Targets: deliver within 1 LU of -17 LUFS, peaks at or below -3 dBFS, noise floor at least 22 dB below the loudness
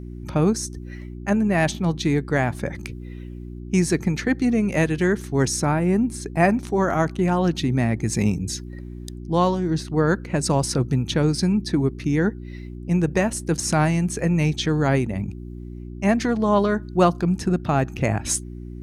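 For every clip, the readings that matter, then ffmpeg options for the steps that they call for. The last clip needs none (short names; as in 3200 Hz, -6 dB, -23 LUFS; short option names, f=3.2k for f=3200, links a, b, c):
hum 60 Hz; harmonics up to 360 Hz; hum level -33 dBFS; loudness -22.0 LUFS; peak -4.0 dBFS; loudness target -17.0 LUFS
-> -af "bandreject=f=60:t=h:w=4,bandreject=f=120:t=h:w=4,bandreject=f=180:t=h:w=4,bandreject=f=240:t=h:w=4,bandreject=f=300:t=h:w=4,bandreject=f=360:t=h:w=4"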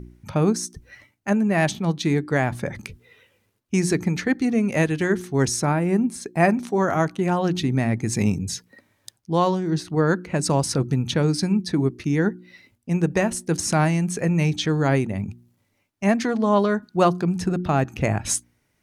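hum none; loudness -22.5 LUFS; peak -5.5 dBFS; loudness target -17.0 LUFS
-> -af "volume=5.5dB,alimiter=limit=-3dB:level=0:latency=1"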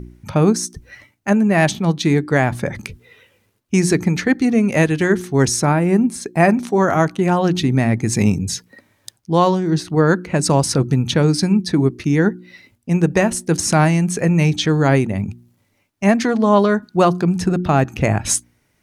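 loudness -17.0 LUFS; peak -3.0 dBFS; noise floor -64 dBFS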